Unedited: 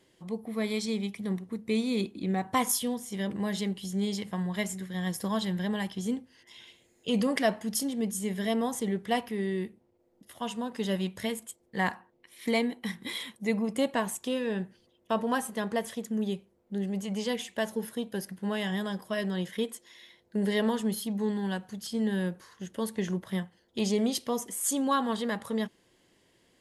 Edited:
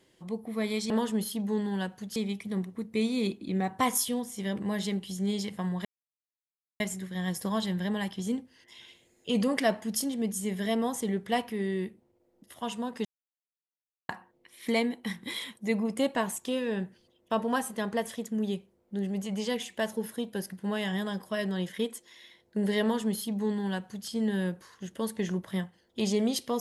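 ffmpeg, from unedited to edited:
-filter_complex "[0:a]asplit=6[a][b][c][d][e][f];[a]atrim=end=0.902[g];[b]atrim=start=20.608:end=21.872[h];[c]atrim=start=0.898:end=4.59,asetpts=PTS-STARTPTS,afade=t=out:st=3.688:d=0.004:c=hsin,apad=pad_dur=0.95[i];[d]atrim=start=4.59:end=10.84,asetpts=PTS-STARTPTS,afade=t=in:d=0.004:c=hsin,afade=t=out:st=6.246:d=0.004:c=hsin[j];[e]atrim=start=10.84:end=11.88,asetpts=PTS-STARTPTS,volume=0[k];[f]atrim=start=11.88,asetpts=PTS-STARTPTS,afade=t=in:d=0.004:c=hsin[l];[g][h]acrossfade=d=0.004:c1=hsin:c2=hsin[m];[i][j][k][l]concat=n=4:v=0:a=1[n];[m][n]acrossfade=d=0.004:c1=hsin:c2=hsin"

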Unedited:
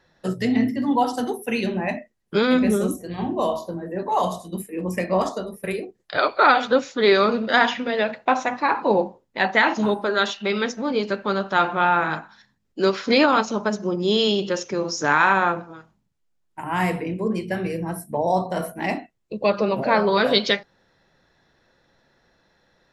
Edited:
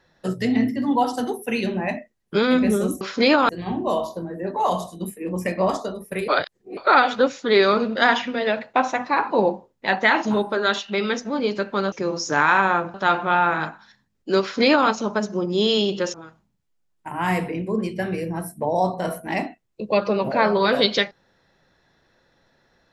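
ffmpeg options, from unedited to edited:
-filter_complex "[0:a]asplit=8[a][b][c][d][e][f][g][h];[a]atrim=end=3.012[i];[b]atrim=start=12.908:end=13.392[j];[c]atrim=start=3.008:end=5.802[k];[d]atrim=start=5.798:end=6.292,asetpts=PTS-STARTPTS,areverse[l];[e]atrim=start=6.288:end=11.442[m];[f]atrim=start=14.638:end=15.662[n];[g]atrim=start=11.438:end=14.642[o];[h]atrim=start=15.658[p];[i][j]acrossfade=d=0.004:c1=hsin:c2=hsin[q];[q][k]acrossfade=d=0.004:c1=hsin:c2=hsin[r];[r][l]acrossfade=d=0.004:c1=hsin:c2=hsin[s];[s][m]acrossfade=d=0.004:c1=hsin:c2=hsin[t];[t][n]acrossfade=d=0.004:c1=hsin:c2=hsin[u];[u][o]acrossfade=d=0.004:c1=hsin:c2=hsin[v];[v][p]acrossfade=d=0.004:c1=hsin:c2=hsin"

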